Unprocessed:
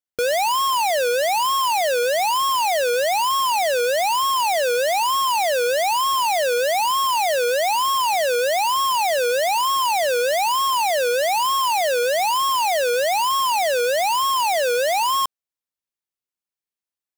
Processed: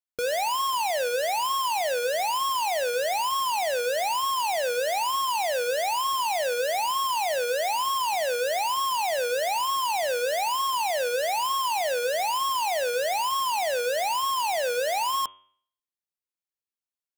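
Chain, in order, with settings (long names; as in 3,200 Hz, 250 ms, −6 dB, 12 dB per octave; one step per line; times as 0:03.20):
hum removal 95.52 Hz, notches 37
level −6 dB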